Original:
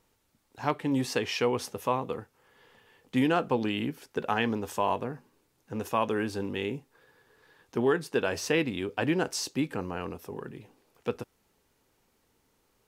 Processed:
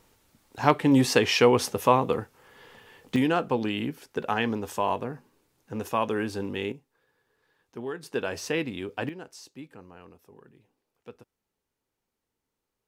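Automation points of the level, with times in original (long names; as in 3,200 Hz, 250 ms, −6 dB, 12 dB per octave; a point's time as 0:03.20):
+8 dB
from 0:03.16 +1 dB
from 0:06.72 −9.5 dB
from 0:08.03 −2 dB
from 0:09.09 −14 dB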